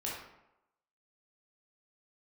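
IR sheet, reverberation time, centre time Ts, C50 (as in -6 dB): 0.90 s, 58 ms, 1.0 dB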